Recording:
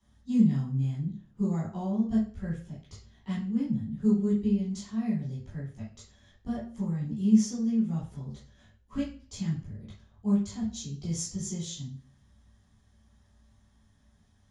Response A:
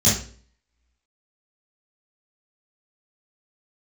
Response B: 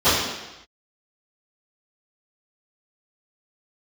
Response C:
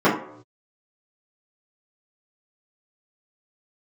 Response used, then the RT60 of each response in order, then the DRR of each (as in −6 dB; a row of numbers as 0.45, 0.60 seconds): A; 0.45 s, non-exponential decay, non-exponential decay; −11.0, −21.0, −11.0 decibels